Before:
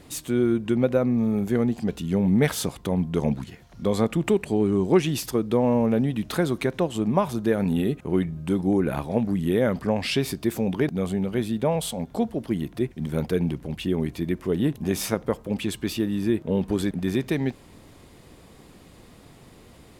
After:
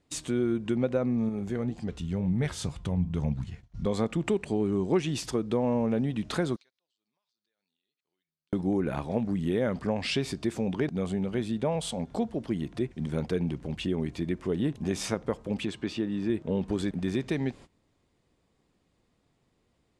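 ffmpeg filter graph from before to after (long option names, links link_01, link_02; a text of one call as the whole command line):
ffmpeg -i in.wav -filter_complex "[0:a]asettb=1/sr,asplit=3[link_01][link_02][link_03];[link_01]atrim=end=1.294[link_04];[link_02]atrim=start=1.29:end=3.86,asetpts=PTS-STARTPTS,afade=type=in:duration=0.004:curve=qsin,afade=type=out:start_time=2.566:duration=0.004:curve=qsin,asubboost=boost=10.5:cutoff=130,flanger=delay=5.6:depth=5.7:regen=79:speed=2:shape=sinusoidal[link_05];[link_03]atrim=start=3.856[link_06];[link_04][link_05]acrossfade=duration=0.004:curve1=hsin:curve2=qsin[link_07];[link_07][link_06]acrossfade=duration=0.004:curve1=qsin:curve2=hsin,asettb=1/sr,asplit=3[link_08][link_09][link_10];[link_08]atrim=end=6.564[link_11];[link_09]atrim=start=6.56:end=8.53,asetpts=PTS-STARTPTS,afade=type=in:duration=0.004:curve=qsin,afade=type=out:start_time=1.966:duration=0.004:curve=qsin,bandpass=frequency=4500:width_type=q:width=4.5,acompressor=threshold=-58dB:ratio=8:attack=3.2:release=140:knee=1:detection=peak[link_12];[link_10]atrim=start=8.526[link_13];[link_11][link_12]acrossfade=duration=0.004:curve1=hsin:curve2=qsin[link_14];[link_14][link_13]acrossfade=duration=0.004:curve1=qsin:curve2=hsin,asettb=1/sr,asplit=3[link_15][link_16][link_17];[link_15]atrim=end=15.654[link_18];[link_16]atrim=start=15.65:end=16.3,asetpts=PTS-STARTPTS,afade=type=in:duration=0.004:curve=qsin,afade=type=out:start_time=0.646:duration=0.004:curve=qsin,highpass=frequency=150:poles=1,aemphasis=mode=reproduction:type=50fm[link_19];[link_17]atrim=start=16.296[link_20];[link_18][link_19]acrossfade=duration=0.004:curve1=hsin:curve2=qsin[link_21];[link_21][link_20]acrossfade=duration=0.004:curve1=qsin:curve2=hsin,agate=range=-22dB:threshold=-41dB:ratio=16:detection=peak,lowpass=frequency=8800:width=0.5412,lowpass=frequency=8800:width=1.3066,acompressor=threshold=-33dB:ratio=1.5" out.wav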